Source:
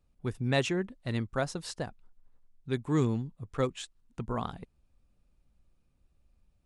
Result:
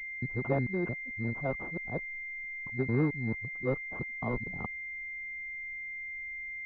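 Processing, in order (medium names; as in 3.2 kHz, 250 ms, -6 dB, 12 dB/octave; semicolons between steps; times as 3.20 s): time reversed locally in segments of 222 ms; gain riding 2 s; class-D stage that switches slowly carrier 2.1 kHz; trim -3 dB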